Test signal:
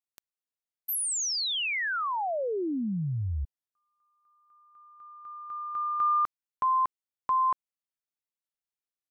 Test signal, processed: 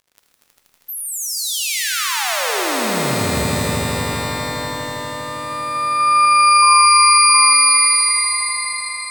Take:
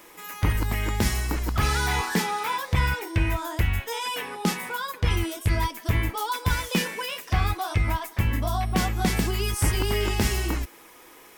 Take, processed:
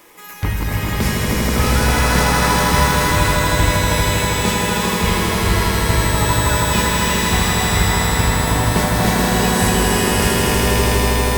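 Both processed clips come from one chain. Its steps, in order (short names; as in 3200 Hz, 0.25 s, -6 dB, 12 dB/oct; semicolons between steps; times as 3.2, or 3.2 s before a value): swelling echo 80 ms, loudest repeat 5, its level -5 dB; crackle 110/s -44 dBFS; shimmer reverb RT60 3.8 s, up +12 st, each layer -2 dB, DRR 4 dB; gain +2 dB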